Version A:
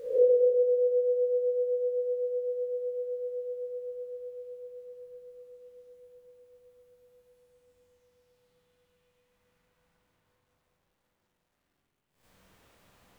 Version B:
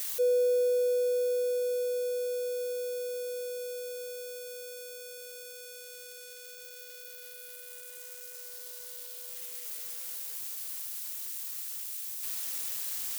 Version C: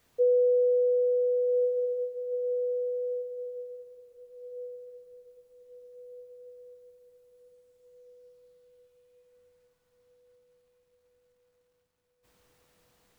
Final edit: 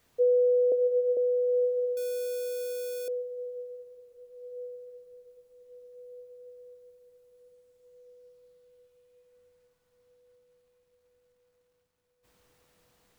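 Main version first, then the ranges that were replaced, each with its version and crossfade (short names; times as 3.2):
C
0.72–1.17 from A
1.97–3.08 from B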